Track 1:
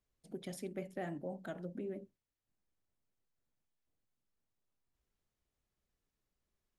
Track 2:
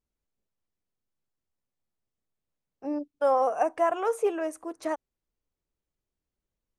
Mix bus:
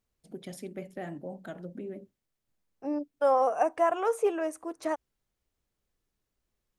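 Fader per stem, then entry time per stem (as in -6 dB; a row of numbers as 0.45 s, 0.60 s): +2.5 dB, -0.5 dB; 0.00 s, 0.00 s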